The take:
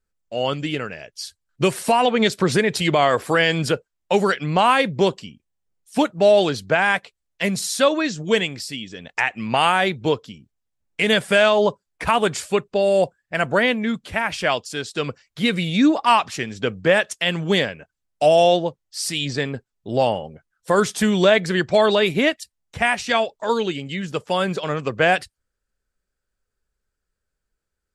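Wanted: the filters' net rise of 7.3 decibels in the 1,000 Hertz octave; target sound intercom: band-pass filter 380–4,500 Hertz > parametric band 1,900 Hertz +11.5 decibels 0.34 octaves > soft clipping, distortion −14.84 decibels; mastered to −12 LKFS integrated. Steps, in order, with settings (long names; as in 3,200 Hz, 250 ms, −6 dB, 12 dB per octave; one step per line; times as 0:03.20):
band-pass filter 380–4,500 Hz
parametric band 1,000 Hz +9 dB
parametric band 1,900 Hz +11.5 dB 0.34 octaves
soft clipping −5.5 dBFS
level +5.5 dB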